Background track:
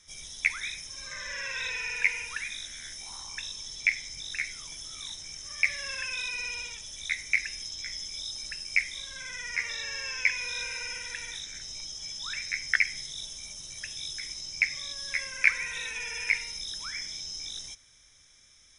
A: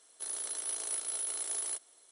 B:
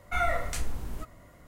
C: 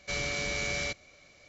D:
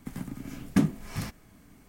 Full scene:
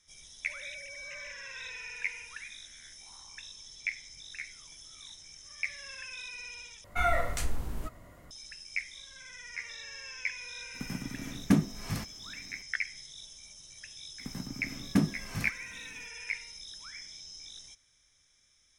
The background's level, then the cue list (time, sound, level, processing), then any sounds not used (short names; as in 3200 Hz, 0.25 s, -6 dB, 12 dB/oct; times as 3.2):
background track -9 dB
0.4 add C -13 dB + sine-wave speech
6.84 replace with B
10.74 add D -1 dB
14.19 add D -3 dB
not used: A